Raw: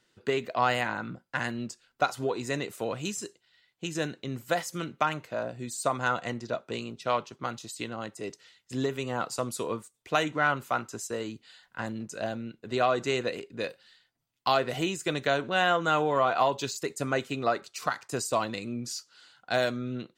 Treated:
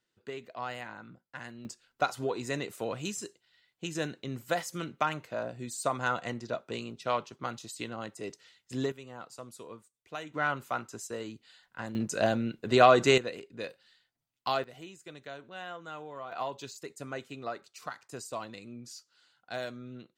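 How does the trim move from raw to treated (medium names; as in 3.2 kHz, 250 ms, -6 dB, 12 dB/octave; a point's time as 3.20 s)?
-12.5 dB
from 1.65 s -2.5 dB
from 8.92 s -14 dB
from 10.34 s -4.5 dB
from 11.95 s +6 dB
from 13.18 s -5.5 dB
from 14.64 s -17.5 dB
from 16.32 s -10.5 dB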